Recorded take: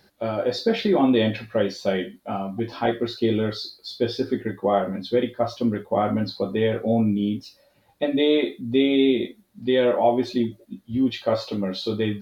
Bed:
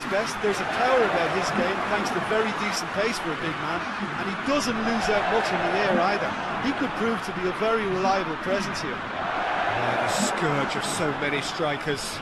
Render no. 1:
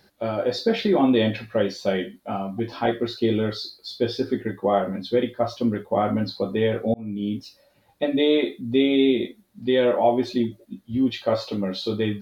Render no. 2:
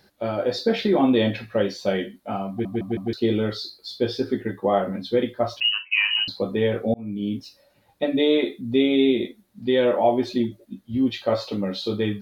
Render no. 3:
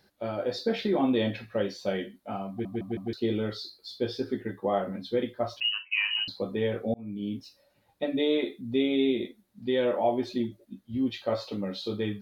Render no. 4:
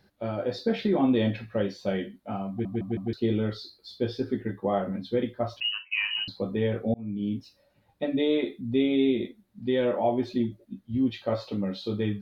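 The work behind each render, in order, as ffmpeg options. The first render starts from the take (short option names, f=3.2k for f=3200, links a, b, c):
-filter_complex "[0:a]asplit=2[a][b];[a]atrim=end=6.94,asetpts=PTS-STARTPTS,afade=t=out:st=6.936:d=0.004:c=hsin[c];[b]atrim=start=6.94,asetpts=PTS-STARTPTS,afade=t=in:d=0.44[d];[c][d]concat=n=2:v=0:a=1"
-filter_complex "[0:a]asettb=1/sr,asplit=3[a][b][c];[a]atrim=end=5.604[d];[b]atrim=start=5.6:end=6.28,asetpts=PTS-STARTPTS,afade=t=in:d=0.004:c=qsin,afade=t=out:st=0.676:d=0.004:c=qsin,lowpass=f=2.6k:t=q:w=0.5098,lowpass=f=2.6k:t=q:w=0.6013,lowpass=f=2.6k:t=q:w=0.9,lowpass=f=2.6k:t=q:w=2.563,afreqshift=-3100[e];[c]atrim=start=6.276[f];[d][e]acrossfade=d=0.004:c1=hsin:c2=qsin[g];[g][f]acrossfade=d=0.004:c1=qsin:c2=hsin,asplit=5[h][i][j][k][l];[h]atrim=end=2.652[m];[i]atrim=start=2.488:end=2.652[n];[j]atrim=start=2.488:end=2.652[o];[k]atrim=start=2.488:end=2.652[p];[l]atrim=start=3.128[q];[m][n]acrossfade=d=0.004:c1=hsin:c2=hsin[r];[r][o]acrossfade=d=0.004:c1=hsin:c2=hsin[s];[s][p]acrossfade=d=0.004:c1=hsin:c2=hsin[t];[t][q]acrossfade=d=0.004:c1=hsin:c2=hsin"
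-af "volume=-6.5dB"
-af "bass=f=250:g=6,treble=f=4k:g=-5"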